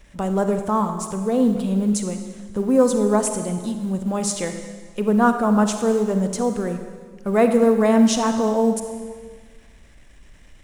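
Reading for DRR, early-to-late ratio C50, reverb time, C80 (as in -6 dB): 6.5 dB, 7.0 dB, 1.6 s, 8.5 dB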